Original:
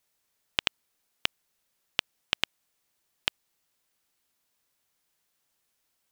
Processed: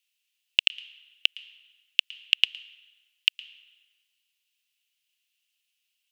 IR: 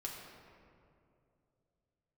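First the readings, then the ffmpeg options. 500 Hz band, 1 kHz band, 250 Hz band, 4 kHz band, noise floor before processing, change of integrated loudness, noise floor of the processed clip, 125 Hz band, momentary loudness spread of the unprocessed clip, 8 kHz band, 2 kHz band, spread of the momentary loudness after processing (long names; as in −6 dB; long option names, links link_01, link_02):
below −30 dB, below −15 dB, below −40 dB, +7.5 dB, −77 dBFS, +7.0 dB, −79 dBFS, below −40 dB, 3 LU, −4.0 dB, +6.0 dB, 20 LU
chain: -filter_complex "[0:a]highpass=frequency=2800:width_type=q:width=6.7,asplit=2[link_01][link_02];[1:a]atrim=start_sample=2205,asetrate=66150,aresample=44100,adelay=112[link_03];[link_02][link_03]afir=irnorm=-1:irlink=0,volume=-14dB[link_04];[link_01][link_04]amix=inputs=2:normalize=0,volume=-5.5dB"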